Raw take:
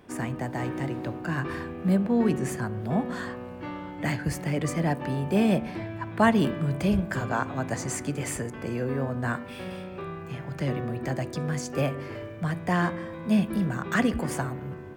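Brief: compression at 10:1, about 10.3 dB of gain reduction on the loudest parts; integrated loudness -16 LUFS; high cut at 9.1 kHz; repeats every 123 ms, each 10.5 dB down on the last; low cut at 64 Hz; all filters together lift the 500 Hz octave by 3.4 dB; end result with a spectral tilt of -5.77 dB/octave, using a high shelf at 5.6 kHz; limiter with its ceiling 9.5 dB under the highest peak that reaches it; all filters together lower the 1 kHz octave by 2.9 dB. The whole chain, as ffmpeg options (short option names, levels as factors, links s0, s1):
-af "highpass=64,lowpass=9100,equalizer=f=500:t=o:g=6,equalizer=f=1000:t=o:g=-6.5,highshelf=f=5600:g=-3.5,acompressor=threshold=0.0447:ratio=10,alimiter=level_in=1.26:limit=0.0631:level=0:latency=1,volume=0.794,aecho=1:1:123|246|369:0.299|0.0896|0.0269,volume=8.91"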